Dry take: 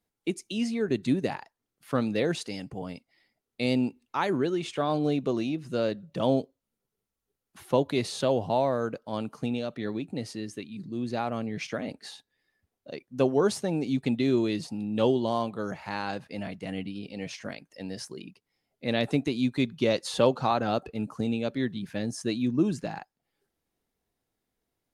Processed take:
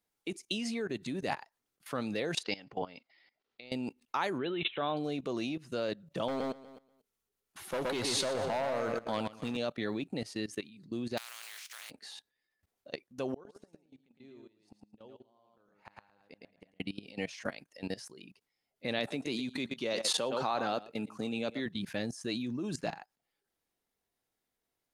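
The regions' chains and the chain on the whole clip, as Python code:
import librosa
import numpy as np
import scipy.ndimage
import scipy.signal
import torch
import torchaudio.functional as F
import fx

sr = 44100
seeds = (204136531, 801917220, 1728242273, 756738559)

y = fx.chain(x, sr, fx.lowpass(hz=4700.0, slope=24),
    fx.low_shelf(hz=240.0, db=-9.5),
    fx.over_compress(threshold_db=-36.0, ratio=-0.5), at=(2.43, 3.72))
y = fx.chain(y, sr, fx.brickwall_lowpass(high_hz=4100.0),
    fx.peak_eq(hz=2800.0, db=5.0, octaves=0.67), at=(4.38, 4.97))
y = fx.chain(y, sr, fx.clip_hard(threshold_db=-23.0),
    fx.echo_feedback(ms=121, feedback_pct=41, wet_db=-6.5), at=(6.28, 9.57))
y = fx.spec_flatten(y, sr, power=0.31, at=(11.17, 11.89), fade=0.02)
y = fx.highpass(y, sr, hz=1200.0, slope=12, at=(11.17, 11.89), fade=0.02)
y = fx.level_steps(y, sr, step_db=14, at=(11.17, 11.89), fade=0.02)
y = fx.chain(y, sr, fx.high_shelf(hz=2800.0, db=-8.0),
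    fx.gate_flip(shuts_db=-27.0, range_db=-30),
    fx.echo_feedback(ms=110, feedback_pct=27, wet_db=-4.0), at=(13.34, 16.8))
y = fx.chain(y, sr, fx.highpass(hz=150.0, slope=12),
    fx.echo_single(ms=114, db=-13.5), at=(18.99, 21.66))
y = fx.level_steps(y, sr, step_db=18)
y = fx.low_shelf(y, sr, hz=410.0, db=-8.5)
y = y * librosa.db_to_amplitude(6.5)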